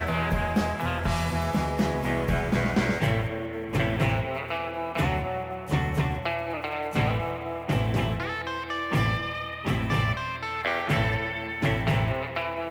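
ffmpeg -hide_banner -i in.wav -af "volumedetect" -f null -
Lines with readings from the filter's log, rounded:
mean_volume: -27.0 dB
max_volume: -13.4 dB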